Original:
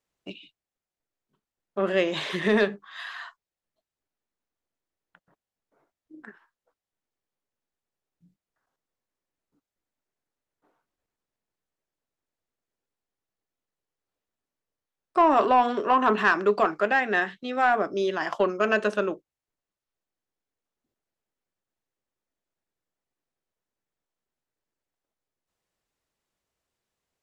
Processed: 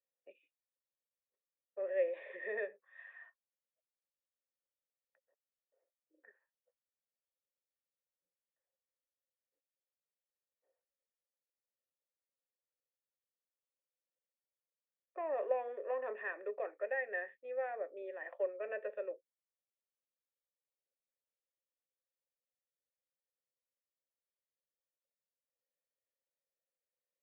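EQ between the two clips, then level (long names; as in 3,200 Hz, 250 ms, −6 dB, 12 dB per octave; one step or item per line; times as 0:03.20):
formant resonators in series e
four-pole ladder high-pass 380 Hz, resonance 25%
0.0 dB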